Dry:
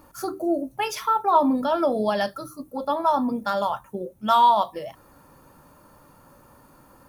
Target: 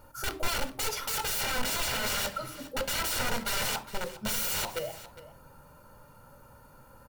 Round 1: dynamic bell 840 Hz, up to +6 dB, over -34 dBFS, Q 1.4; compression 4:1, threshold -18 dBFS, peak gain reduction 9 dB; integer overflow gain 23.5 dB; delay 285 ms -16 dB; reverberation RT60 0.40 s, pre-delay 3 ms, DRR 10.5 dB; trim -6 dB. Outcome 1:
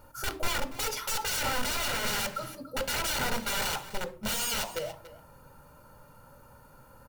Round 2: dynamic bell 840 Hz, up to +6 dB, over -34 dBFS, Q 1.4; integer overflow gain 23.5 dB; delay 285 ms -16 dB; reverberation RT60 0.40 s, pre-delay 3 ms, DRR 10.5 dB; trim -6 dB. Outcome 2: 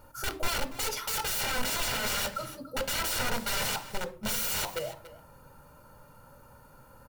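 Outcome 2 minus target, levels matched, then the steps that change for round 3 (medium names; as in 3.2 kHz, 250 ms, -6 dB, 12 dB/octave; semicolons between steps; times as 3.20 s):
echo 123 ms early
change: delay 408 ms -16 dB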